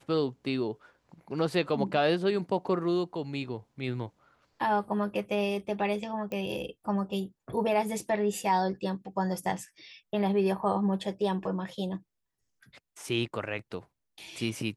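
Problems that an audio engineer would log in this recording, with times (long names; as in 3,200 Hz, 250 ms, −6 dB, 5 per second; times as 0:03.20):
0:06.32: click −23 dBFS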